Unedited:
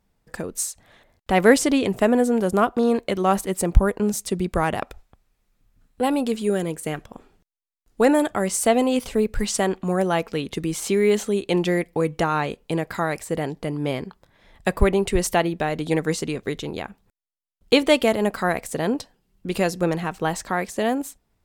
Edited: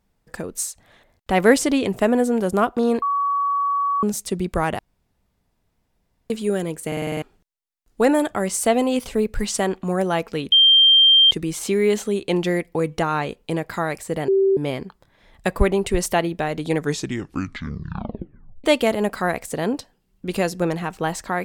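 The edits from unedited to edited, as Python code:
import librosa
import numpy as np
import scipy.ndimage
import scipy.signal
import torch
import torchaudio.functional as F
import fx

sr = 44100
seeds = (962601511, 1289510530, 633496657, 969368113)

y = fx.edit(x, sr, fx.bleep(start_s=3.02, length_s=1.01, hz=1130.0, db=-18.0),
    fx.room_tone_fill(start_s=4.79, length_s=1.51),
    fx.stutter_over(start_s=6.87, slice_s=0.05, count=7),
    fx.insert_tone(at_s=10.52, length_s=0.79, hz=3170.0, db=-9.5),
    fx.bleep(start_s=13.49, length_s=0.29, hz=388.0, db=-13.5),
    fx.tape_stop(start_s=15.96, length_s=1.89), tone=tone)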